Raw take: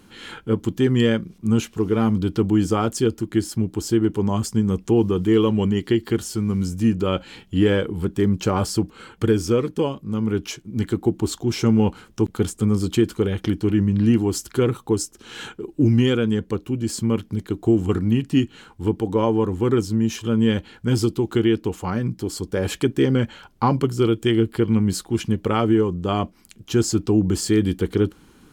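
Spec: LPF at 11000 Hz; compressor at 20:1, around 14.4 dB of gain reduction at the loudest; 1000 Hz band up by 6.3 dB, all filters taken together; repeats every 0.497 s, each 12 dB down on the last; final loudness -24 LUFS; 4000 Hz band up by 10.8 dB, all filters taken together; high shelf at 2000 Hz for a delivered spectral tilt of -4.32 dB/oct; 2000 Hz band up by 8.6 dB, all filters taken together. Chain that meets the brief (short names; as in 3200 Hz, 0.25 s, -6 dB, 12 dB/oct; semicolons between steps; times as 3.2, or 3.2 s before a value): LPF 11000 Hz; bell 1000 Hz +4.5 dB; high shelf 2000 Hz +8 dB; bell 2000 Hz +3.5 dB; bell 4000 Hz +5 dB; compressor 20:1, threshold -26 dBFS; feedback echo 0.497 s, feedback 25%, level -12 dB; gain +7 dB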